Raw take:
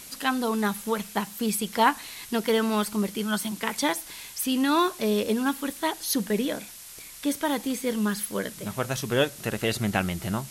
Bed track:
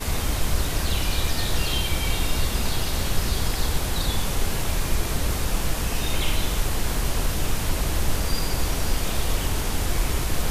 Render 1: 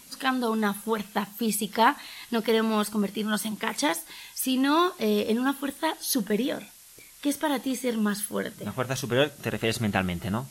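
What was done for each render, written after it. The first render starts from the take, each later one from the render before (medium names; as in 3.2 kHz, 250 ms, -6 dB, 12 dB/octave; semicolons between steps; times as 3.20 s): noise print and reduce 7 dB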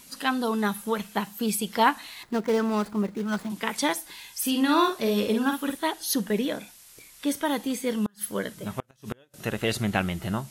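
2.23–3.50 s: median filter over 15 samples; 4.33–5.76 s: doubling 49 ms -5.5 dB; 7.98–9.34 s: inverted gate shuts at -16 dBFS, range -35 dB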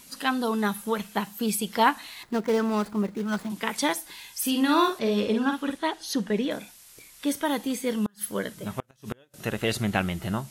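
4.99–6.51 s: distance through air 59 m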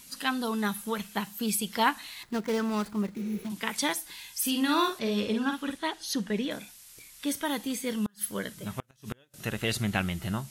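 3.20–3.42 s: spectral replace 360–9900 Hz before; peaking EQ 540 Hz -6 dB 2.7 oct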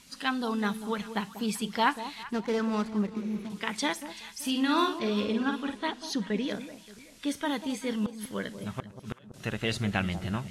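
distance through air 60 m; on a send: echo whose repeats swap between lows and highs 192 ms, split 950 Hz, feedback 53%, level -10.5 dB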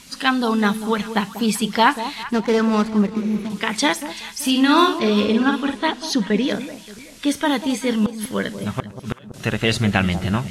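trim +11 dB; peak limiter -3 dBFS, peak gain reduction 2.5 dB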